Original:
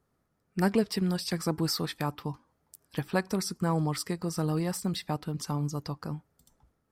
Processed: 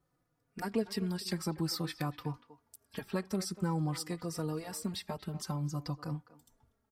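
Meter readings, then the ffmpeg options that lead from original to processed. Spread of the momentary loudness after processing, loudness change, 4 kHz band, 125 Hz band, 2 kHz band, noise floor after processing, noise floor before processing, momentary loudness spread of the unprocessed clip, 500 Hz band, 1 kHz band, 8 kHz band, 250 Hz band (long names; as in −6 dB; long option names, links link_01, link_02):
8 LU, −5.5 dB, −5.0 dB, −5.0 dB, −7.0 dB, −79 dBFS, −76 dBFS, 12 LU, −6.5 dB, −6.5 dB, −5.0 dB, −6.0 dB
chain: -filter_complex "[0:a]asplit=2[link_01][link_02];[link_02]adelay=240,highpass=300,lowpass=3400,asoftclip=type=hard:threshold=-21.5dB,volume=-16dB[link_03];[link_01][link_03]amix=inputs=2:normalize=0,acompressor=threshold=-30dB:ratio=2,asplit=2[link_04][link_05];[link_05]adelay=3.5,afreqshift=-0.51[link_06];[link_04][link_06]amix=inputs=2:normalize=1"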